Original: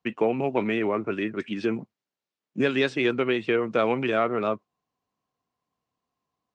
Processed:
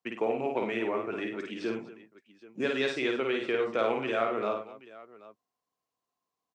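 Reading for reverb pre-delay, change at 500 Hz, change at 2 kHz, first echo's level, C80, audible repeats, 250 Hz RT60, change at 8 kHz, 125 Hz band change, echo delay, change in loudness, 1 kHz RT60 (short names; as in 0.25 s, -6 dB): none, -4.5 dB, -4.5 dB, -3.5 dB, none, 4, none, n/a, -11.5 dB, 53 ms, -5.0 dB, none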